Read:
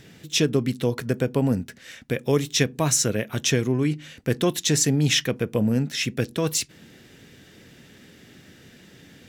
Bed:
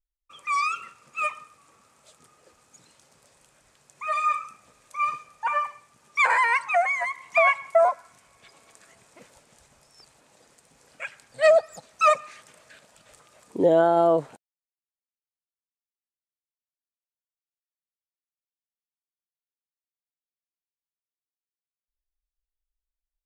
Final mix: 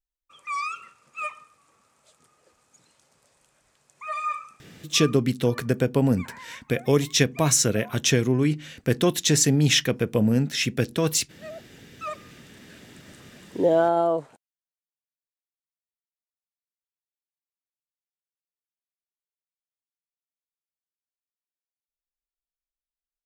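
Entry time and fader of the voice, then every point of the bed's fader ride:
4.60 s, +1.0 dB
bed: 0:04.93 −4.5 dB
0:05.29 −23.5 dB
0:11.65 −23.5 dB
0:12.81 −1 dB
0:13.89 −1 dB
0:15.02 −13.5 dB

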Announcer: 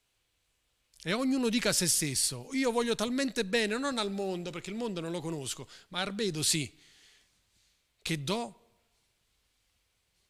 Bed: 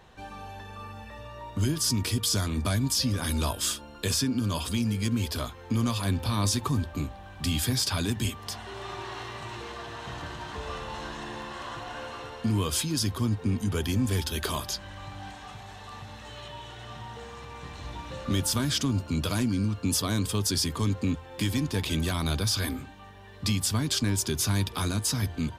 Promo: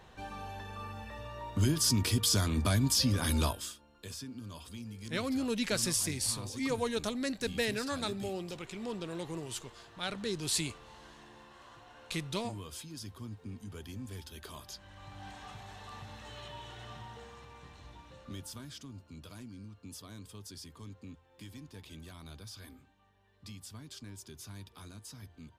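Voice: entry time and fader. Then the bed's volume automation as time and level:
4.05 s, −4.0 dB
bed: 0:03.45 −1.5 dB
0:03.73 −17 dB
0:14.50 −17 dB
0:15.38 −4.5 dB
0:16.83 −4.5 dB
0:18.84 −21 dB

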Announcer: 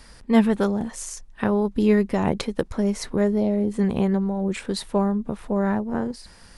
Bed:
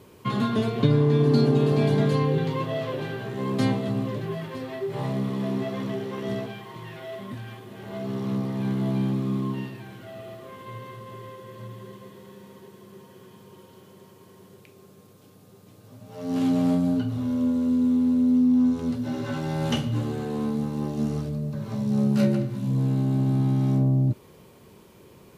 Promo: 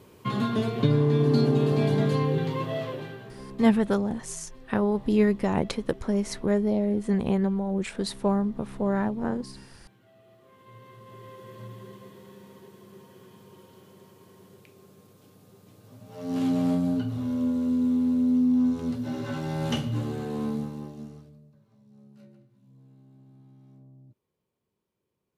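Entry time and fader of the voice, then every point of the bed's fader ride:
3.30 s, −3.0 dB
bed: 0:02.81 −2 dB
0:03.65 −18 dB
0:10.20 −18 dB
0:11.44 −2.5 dB
0:20.54 −2.5 dB
0:21.71 −31.5 dB

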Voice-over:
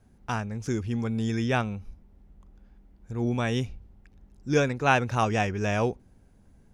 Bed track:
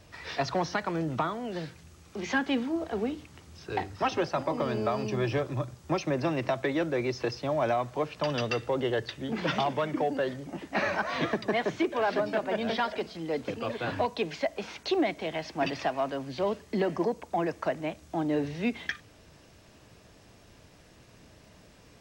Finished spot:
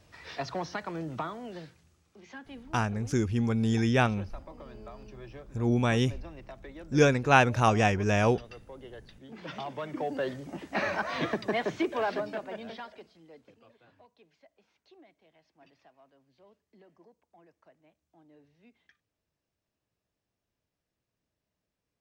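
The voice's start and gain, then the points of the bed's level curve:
2.45 s, +1.5 dB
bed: 0:01.47 −5.5 dB
0:02.21 −18 dB
0:09.04 −18 dB
0:10.27 −1.5 dB
0:12.00 −1.5 dB
0:13.95 −31 dB

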